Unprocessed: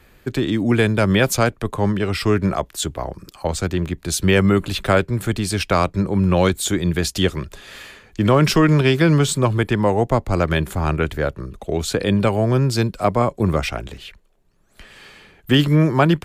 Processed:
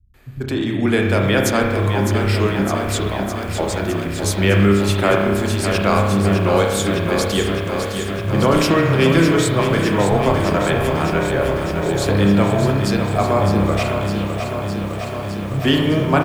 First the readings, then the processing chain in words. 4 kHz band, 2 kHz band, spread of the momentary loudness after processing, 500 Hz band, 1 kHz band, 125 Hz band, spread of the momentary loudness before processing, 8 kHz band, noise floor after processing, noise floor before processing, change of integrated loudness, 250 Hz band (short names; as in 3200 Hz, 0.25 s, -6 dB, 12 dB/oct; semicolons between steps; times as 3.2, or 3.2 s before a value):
+1.0 dB, +2.5 dB, 8 LU, +2.5 dB, +2.5 dB, +0.5 dB, 11 LU, 0.0 dB, -25 dBFS, -55 dBFS, +1.0 dB, +1.5 dB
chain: bands offset in time lows, highs 0.14 s, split 150 Hz; spring tank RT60 1.3 s, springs 30 ms, chirp 50 ms, DRR 1 dB; lo-fi delay 0.609 s, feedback 80%, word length 7-bit, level -7.5 dB; gain -1.5 dB